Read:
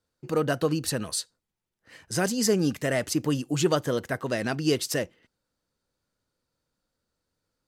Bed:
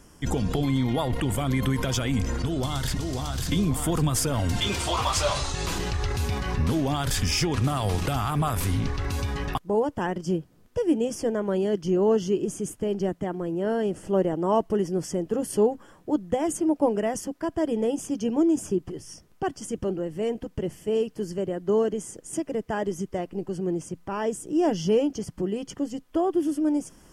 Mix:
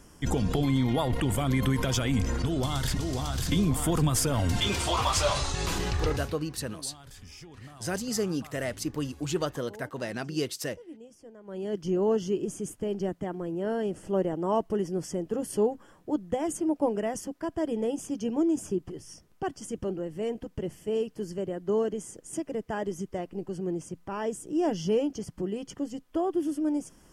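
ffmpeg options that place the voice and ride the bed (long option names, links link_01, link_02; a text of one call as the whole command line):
ffmpeg -i stem1.wav -i stem2.wav -filter_complex "[0:a]adelay=5700,volume=-6dB[link_01];[1:a]volume=18dB,afade=type=out:start_time=6.04:duration=0.32:silence=0.0794328,afade=type=in:start_time=11.43:duration=0.4:silence=0.112202[link_02];[link_01][link_02]amix=inputs=2:normalize=0" out.wav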